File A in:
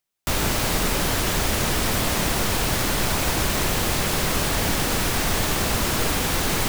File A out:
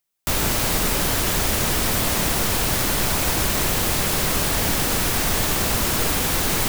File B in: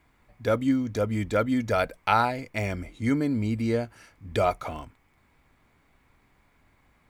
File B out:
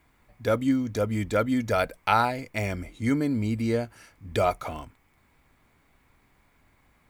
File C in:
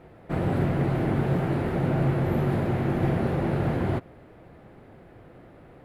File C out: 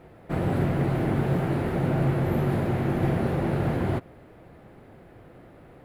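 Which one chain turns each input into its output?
high-shelf EQ 8,300 Hz +6 dB

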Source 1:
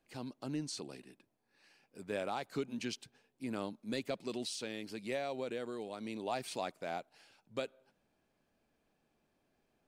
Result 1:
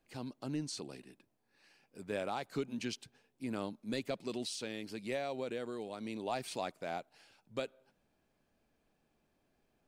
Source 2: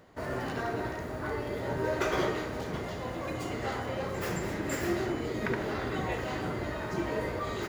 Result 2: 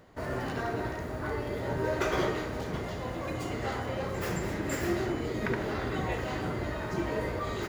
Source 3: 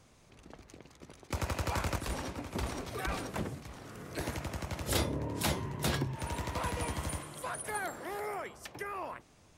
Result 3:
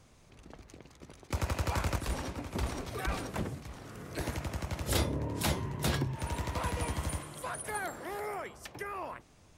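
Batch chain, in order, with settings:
low-shelf EQ 98 Hz +5 dB

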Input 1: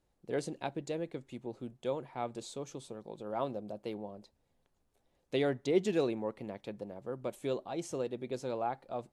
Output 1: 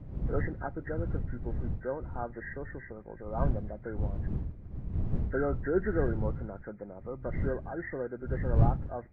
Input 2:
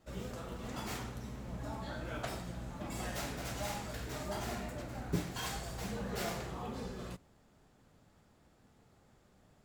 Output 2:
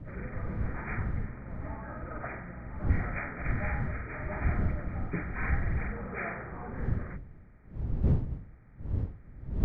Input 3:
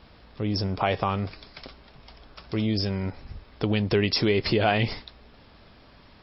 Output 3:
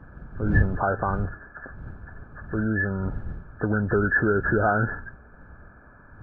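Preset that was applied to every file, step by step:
hearing-aid frequency compression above 1,200 Hz 4 to 1
wind on the microphone 100 Hz −33 dBFS

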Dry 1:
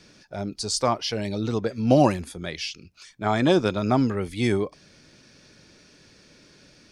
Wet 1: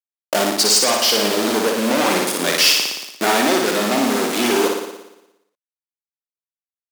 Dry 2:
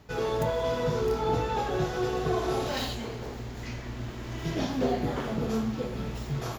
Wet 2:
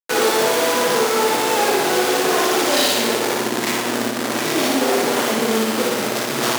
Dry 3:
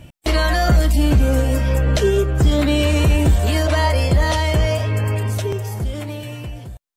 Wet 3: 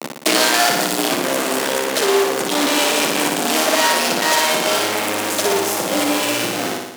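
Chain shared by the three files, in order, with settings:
hold until the input has moved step −38.5 dBFS
fuzz pedal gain 43 dB, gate −37 dBFS
high-shelf EQ 11,000 Hz −5 dB
on a send: flutter between parallel walls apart 10 metres, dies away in 0.93 s
on the sum: speech leveller within 5 dB 0.5 s
high-pass filter 240 Hz 24 dB per octave
high-shelf EQ 4,300 Hz +7.5 dB
level −2.5 dB

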